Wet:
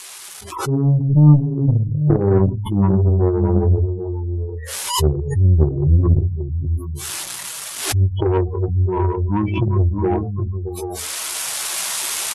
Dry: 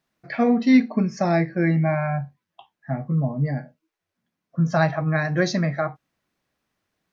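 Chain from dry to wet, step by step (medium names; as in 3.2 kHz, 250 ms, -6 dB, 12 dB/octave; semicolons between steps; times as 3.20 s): zero-crossing glitches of -19.5 dBFS; treble shelf 2.1 kHz -5 dB; de-hum 178.6 Hz, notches 37; on a send: multi-tap echo 53/87/91/357/363/450 ms -18/-14.5/-18/-13.5/-14/-9 dB; on the sum: level rider gain up to 12 dB; spectral gate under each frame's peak -15 dB strong; Chebyshev shaper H 2 -10 dB, 3 -28 dB, 7 -35 dB, 8 -26 dB, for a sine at -2 dBFS; speed mistake 78 rpm record played at 45 rpm; swell ahead of each attack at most 73 dB/s; trim -1 dB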